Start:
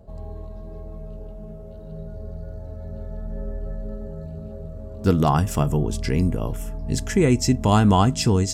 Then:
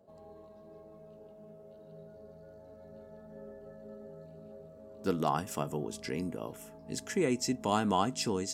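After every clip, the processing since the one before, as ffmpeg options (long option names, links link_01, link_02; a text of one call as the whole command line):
ffmpeg -i in.wav -af "highpass=250,volume=-9dB" out.wav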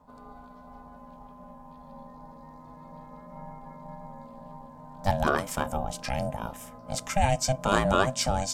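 ffmpeg -i in.wav -af "lowshelf=frequency=64:gain=-9.5,bandreject=frequency=690:width=12,aeval=exprs='val(0)*sin(2*PI*390*n/s)':channel_layout=same,volume=9dB" out.wav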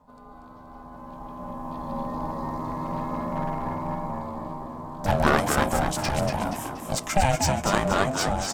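ffmpeg -i in.wav -filter_complex "[0:a]dynaudnorm=framelen=330:gausssize=9:maxgain=15.5dB,aeval=exprs='clip(val(0),-1,0.0708)':channel_layout=same,asplit=2[link_01][link_02];[link_02]asplit=5[link_03][link_04][link_05][link_06][link_07];[link_03]adelay=238,afreqshift=74,volume=-6dB[link_08];[link_04]adelay=476,afreqshift=148,volume=-13.7dB[link_09];[link_05]adelay=714,afreqshift=222,volume=-21.5dB[link_10];[link_06]adelay=952,afreqshift=296,volume=-29.2dB[link_11];[link_07]adelay=1190,afreqshift=370,volume=-37dB[link_12];[link_08][link_09][link_10][link_11][link_12]amix=inputs=5:normalize=0[link_13];[link_01][link_13]amix=inputs=2:normalize=0" out.wav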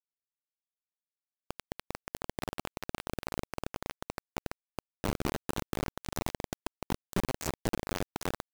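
ffmpeg -i in.wav -af "firequalizer=gain_entry='entry(170,0);entry(350,7);entry(780,-27);entry(1100,-21);entry(3800,-13)':delay=0.05:min_phase=1,acompressor=threshold=-35dB:ratio=4,acrusher=bits=4:mix=0:aa=0.000001,volume=2.5dB" out.wav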